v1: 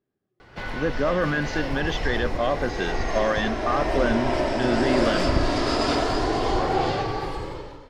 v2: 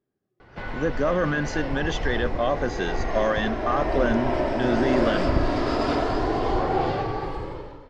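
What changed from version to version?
speech: remove distance through air 210 m; master: add low-pass 1.9 kHz 6 dB/octave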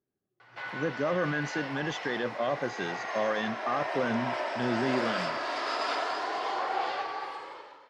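speech -6.0 dB; background: add high-pass 940 Hz 12 dB/octave

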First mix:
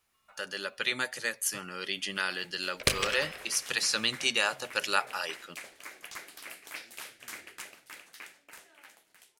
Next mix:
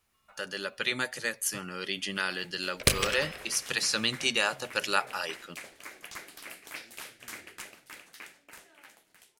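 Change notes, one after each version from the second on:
second sound: add treble shelf 8.8 kHz +8.5 dB; master: add bass shelf 320 Hz +6.5 dB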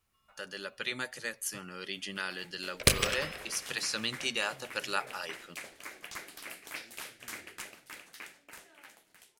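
speech -5.5 dB

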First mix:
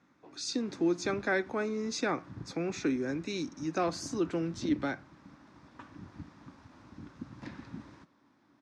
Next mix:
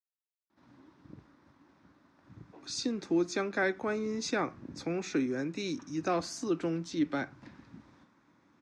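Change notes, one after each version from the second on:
speech: entry +2.30 s; background -7.5 dB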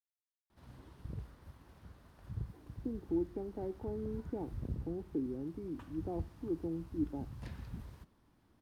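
speech: add cascade formant filter u; master: remove cabinet simulation 220–6100 Hz, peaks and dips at 290 Hz +8 dB, 450 Hz -8 dB, 710 Hz -4 dB, 3 kHz -7 dB, 4.5 kHz -4 dB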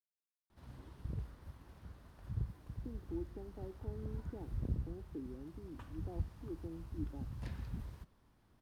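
speech -9.0 dB; background: add bass shelf 69 Hz +6 dB

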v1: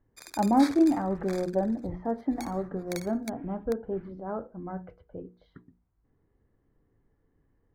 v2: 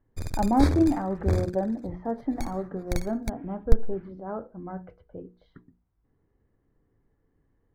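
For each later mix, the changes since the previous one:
background: remove high-pass 1.2 kHz 12 dB/octave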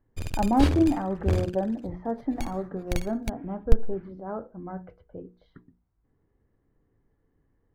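background: remove Butterworth band-stop 2.9 kHz, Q 2.2

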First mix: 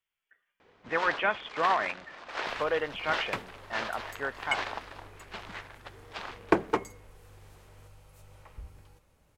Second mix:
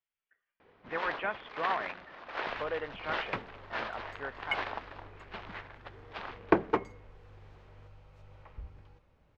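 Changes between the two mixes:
speech -5.5 dB; master: add distance through air 220 m

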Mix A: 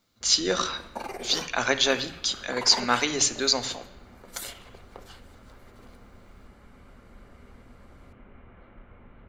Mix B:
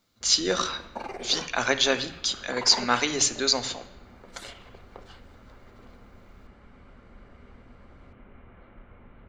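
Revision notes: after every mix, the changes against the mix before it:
second sound: add distance through air 100 m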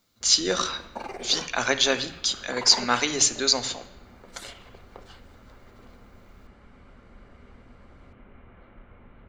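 master: add treble shelf 6.9 kHz +6 dB

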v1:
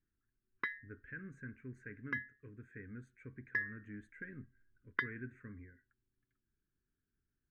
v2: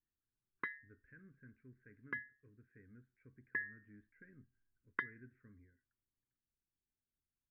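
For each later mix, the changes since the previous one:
speech -11.0 dB; master: add distance through air 420 m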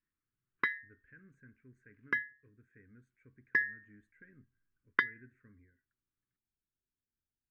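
background +6.5 dB; master: remove distance through air 420 m

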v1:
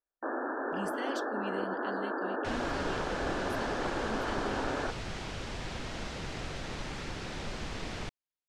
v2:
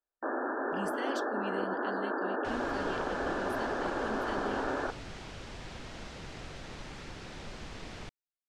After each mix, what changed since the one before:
second sound -5.5 dB; reverb: on, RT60 1.2 s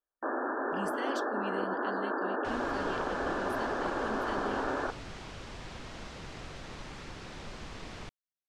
master: add peaking EQ 1.1 kHz +3 dB 0.39 oct

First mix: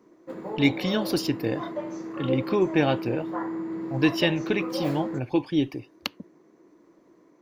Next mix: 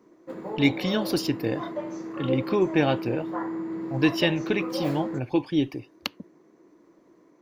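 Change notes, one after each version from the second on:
no change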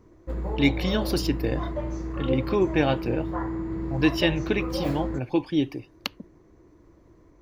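background: remove high-pass 190 Hz 24 dB/octave

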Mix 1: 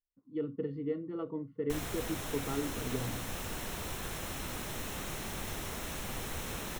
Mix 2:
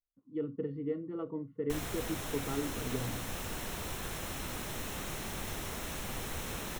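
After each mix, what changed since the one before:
speech: add distance through air 200 m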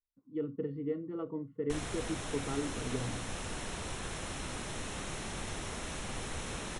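master: add brick-wall FIR low-pass 11 kHz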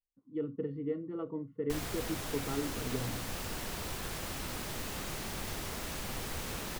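background: remove band-stop 4.7 kHz, Q 5.7; master: remove brick-wall FIR low-pass 11 kHz

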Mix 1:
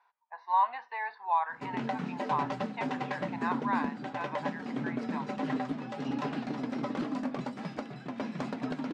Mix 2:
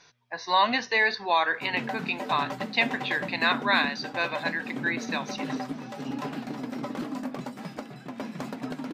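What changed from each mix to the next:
speech: remove ladder band-pass 980 Hz, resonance 70%; master: remove distance through air 82 m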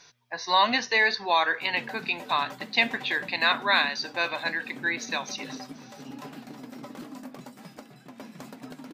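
background -8.0 dB; master: remove low-pass 3.6 kHz 6 dB/octave

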